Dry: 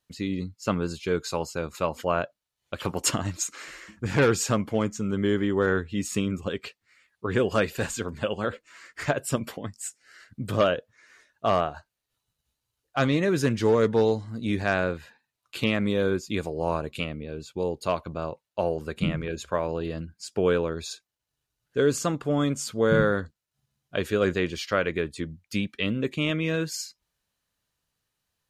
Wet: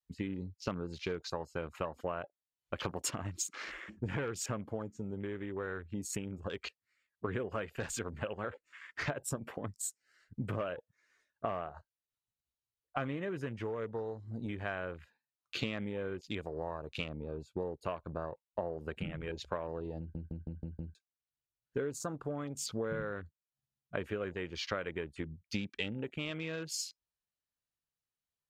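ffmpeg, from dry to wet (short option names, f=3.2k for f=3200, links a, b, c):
-filter_complex "[0:a]asplit=7[a][b][c][d][e][f][g];[a]atrim=end=20.152[h];[b]atrim=start=19.988:end=20.152[i];[c]atrim=start=19.988:end=20.152[j];[d]atrim=start=19.988:end=20.152[k];[e]atrim=start=19.988:end=20.152[l];[f]atrim=start=19.988:end=20.152[m];[g]atrim=start=20.948[n];[h][i]acrossfade=d=0.004:c1=hsin:c2=hsin[o];[o][j]acrossfade=d=0.004:c1=hsin:c2=hsin[p];[p][k]acrossfade=d=0.004:c1=hsin:c2=hsin[q];[q][l]acrossfade=d=0.004:c1=hsin:c2=hsin[r];[r][m]acrossfade=d=0.004:c1=hsin:c2=hsin[s];[s][n]acrossfade=d=0.004:c1=hsin:c2=hsin,acompressor=threshold=-31dB:ratio=16,adynamicequalizer=threshold=0.00398:dfrequency=220:dqfactor=0.93:tfrequency=220:tqfactor=0.93:attack=5:release=100:ratio=0.375:range=3.5:mode=cutabove:tftype=bell,afwtdn=0.00447,volume=-1dB"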